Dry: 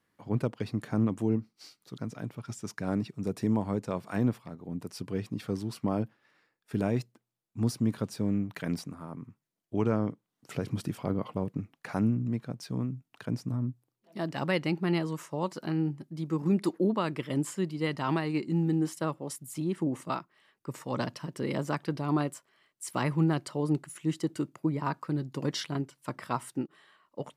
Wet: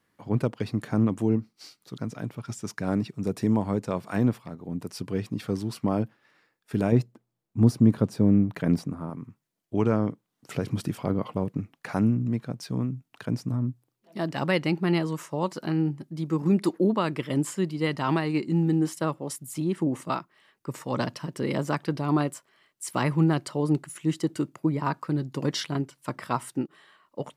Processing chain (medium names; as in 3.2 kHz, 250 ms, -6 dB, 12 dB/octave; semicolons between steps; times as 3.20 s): 6.92–9.10 s: tilt shelf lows +5.5 dB, about 1.2 kHz; trim +4 dB